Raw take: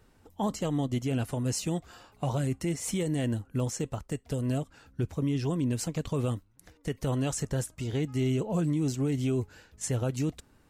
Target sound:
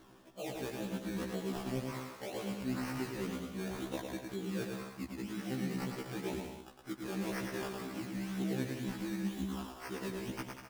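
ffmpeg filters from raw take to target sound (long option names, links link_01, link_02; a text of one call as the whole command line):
ffmpeg -i in.wav -filter_complex "[0:a]acrossover=split=260 6400:gain=0.1 1 0.224[link_01][link_02][link_03];[link_01][link_02][link_03]amix=inputs=3:normalize=0,bandreject=frequency=4200:width=6.6,areverse,acompressor=threshold=-47dB:ratio=6,areverse,asetrate=33038,aresample=44100,atempo=1.33484,acrusher=samples=17:mix=1:aa=0.000001:lfo=1:lforange=10.2:lforate=2,asplit=2[link_04][link_05];[link_05]aecho=0:1:110|192.5|254.4|300.8|335.6:0.631|0.398|0.251|0.158|0.1[link_06];[link_04][link_06]amix=inputs=2:normalize=0,afftfilt=real='re*1.73*eq(mod(b,3),0)':imag='im*1.73*eq(mod(b,3),0)':win_size=2048:overlap=0.75,volume=11dB" out.wav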